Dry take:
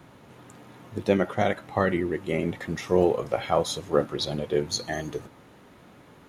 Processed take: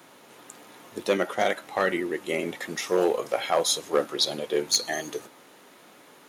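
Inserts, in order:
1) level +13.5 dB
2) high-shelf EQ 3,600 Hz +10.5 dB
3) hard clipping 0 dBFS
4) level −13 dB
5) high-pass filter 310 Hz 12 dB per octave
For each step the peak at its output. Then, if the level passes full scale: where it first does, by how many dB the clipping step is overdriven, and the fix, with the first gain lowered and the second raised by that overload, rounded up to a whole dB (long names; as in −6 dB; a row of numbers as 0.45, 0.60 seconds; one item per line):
+6.5, +7.0, 0.0, −13.0, −9.0 dBFS
step 1, 7.0 dB
step 1 +6.5 dB, step 4 −6 dB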